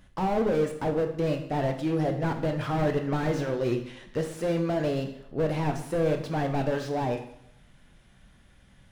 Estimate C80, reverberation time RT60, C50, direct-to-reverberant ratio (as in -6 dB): 12.0 dB, 0.75 s, 9.0 dB, 5.0 dB